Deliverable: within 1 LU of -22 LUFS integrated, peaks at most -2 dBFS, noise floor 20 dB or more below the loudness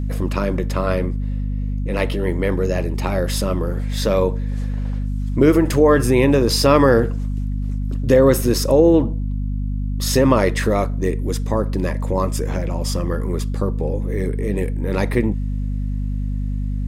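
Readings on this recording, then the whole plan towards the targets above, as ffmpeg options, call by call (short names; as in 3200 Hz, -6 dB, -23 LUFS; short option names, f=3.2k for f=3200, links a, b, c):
hum 50 Hz; harmonics up to 250 Hz; hum level -20 dBFS; loudness -19.5 LUFS; peak -1.5 dBFS; loudness target -22.0 LUFS
-> -af "bandreject=f=50:t=h:w=4,bandreject=f=100:t=h:w=4,bandreject=f=150:t=h:w=4,bandreject=f=200:t=h:w=4,bandreject=f=250:t=h:w=4"
-af "volume=-2.5dB"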